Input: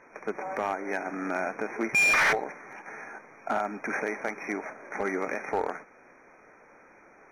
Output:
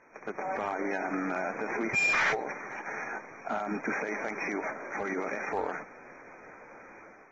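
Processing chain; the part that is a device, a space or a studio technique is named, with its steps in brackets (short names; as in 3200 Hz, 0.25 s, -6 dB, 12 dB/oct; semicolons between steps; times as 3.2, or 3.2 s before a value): low-bitrate web radio (AGC gain up to 9.5 dB; limiter -19 dBFS, peak gain reduction 9.5 dB; gain -5 dB; AAC 24 kbps 48000 Hz)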